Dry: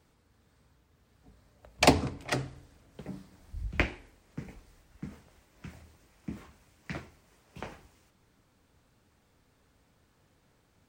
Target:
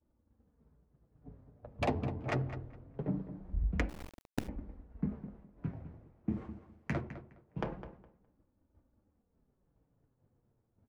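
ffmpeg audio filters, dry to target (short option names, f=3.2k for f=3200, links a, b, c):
-filter_complex "[0:a]acompressor=threshold=-35dB:ratio=4,asettb=1/sr,asplit=3[a][b][c];[a]atrim=end=6.294[d];[b]atrim=start=6.29:end=7.01,asetpts=PTS-STARTPTS,afade=t=in:d=0.004:c=qsin,afade=t=out:st=0.716:d=0.004:c=qsin,aemphasis=mode=production:type=75kf[e];[c]atrim=start=7.006[f];[d][e]acrossfade=d=0.004:c1=hsin:c2=qsin[g];[g][f]acrossfade=d=0.004:c1=qsin:c2=hsin,asoftclip=type=tanh:threshold=-25.5dB,adynamicsmooth=sensitivity=2.5:basefreq=700,agate=range=-33dB:threshold=-59dB:ratio=3:detection=peak,flanger=delay=3.3:depth=5.8:regen=-23:speed=0.23:shape=sinusoidal,asplit=2[h][i];[i]adelay=207,lowpass=f=3.5k:p=1,volume=-12dB,asplit=2[j][k];[k]adelay=207,lowpass=f=3.5k:p=1,volume=0.2,asplit=2[l][m];[m]adelay=207,lowpass=f=3.5k:p=1,volume=0.2[n];[h][j][l][n]amix=inputs=4:normalize=0,asplit=3[o][p][q];[o]afade=t=out:st=3.88:d=0.02[r];[p]acrusher=bits=7:dc=4:mix=0:aa=0.000001,afade=t=in:st=3.88:d=0.02,afade=t=out:st=4.47:d=0.02[s];[q]afade=t=in:st=4.47:d=0.02[t];[r][s][t]amix=inputs=3:normalize=0,volume=11.5dB"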